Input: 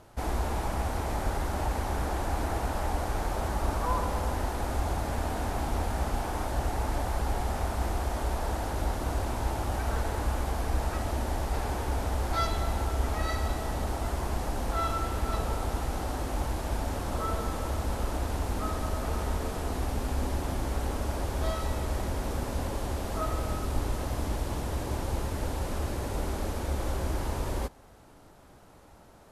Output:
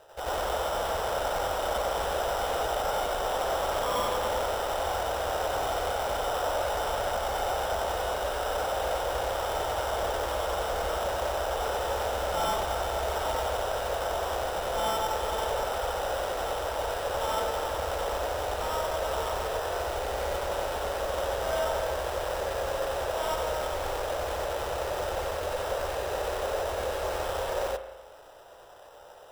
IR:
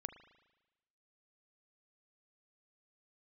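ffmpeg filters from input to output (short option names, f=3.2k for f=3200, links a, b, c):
-filter_complex "[0:a]acrusher=samples=20:mix=1:aa=0.000001,lowshelf=f=360:t=q:w=3:g=-13,asoftclip=type=hard:threshold=-28dB,asplit=2[a][b];[1:a]atrim=start_sample=2205,adelay=91[c];[b][c]afir=irnorm=-1:irlink=0,volume=7dB[d];[a][d]amix=inputs=2:normalize=0,volume=-1.5dB"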